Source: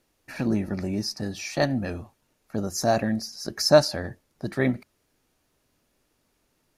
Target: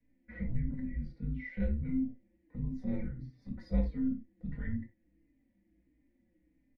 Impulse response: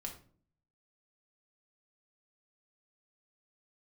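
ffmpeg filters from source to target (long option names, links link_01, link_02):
-filter_complex "[0:a]highshelf=frequency=3900:width_type=q:width=1.5:gain=-12.5,acrossover=split=190[link_01][link_02];[link_01]alimiter=level_in=7dB:limit=-24dB:level=0:latency=1,volume=-7dB[link_03];[link_02]asplit=3[link_04][link_05][link_06];[link_04]bandpass=frequency=300:width_type=q:width=8,volume=0dB[link_07];[link_05]bandpass=frequency=870:width_type=q:width=8,volume=-6dB[link_08];[link_06]bandpass=frequency=2240:width_type=q:width=8,volume=-9dB[link_09];[link_07][link_08][link_09]amix=inputs=3:normalize=0[link_10];[link_03][link_10]amix=inputs=2:normalize=0,afreqshift=-350,asplit=2[link_11][link_12];[link_12]acompressor=threshold=-46dB:ratio=6,volume=2dB[link_13];[link_11][link_13]amix=inputs=2:normalize=0[link_14];[1:a]atrim=start_sample=2205,atrim=end_sample=4410[link_15];[link_14][link_15]afir=irnorm=-1:irlink=0,asplit=2[link_16][link_17];[link_17]adelay=4.5,afreqshift=-1.5[link_18];[link_16][link_18]amix=inputs=2:normalize=1,volume=1dB"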